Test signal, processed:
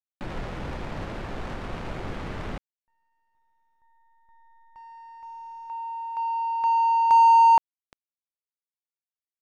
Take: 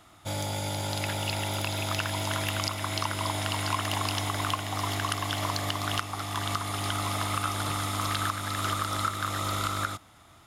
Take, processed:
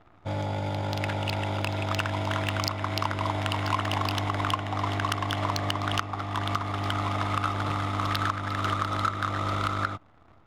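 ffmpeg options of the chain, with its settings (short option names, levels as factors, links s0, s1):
-af "acrusher=bits=9:dc=4:mix=0:aa=0.000001,adynamicsmooth=sensitivity=2.5:basefreq=1500,volume=1.41"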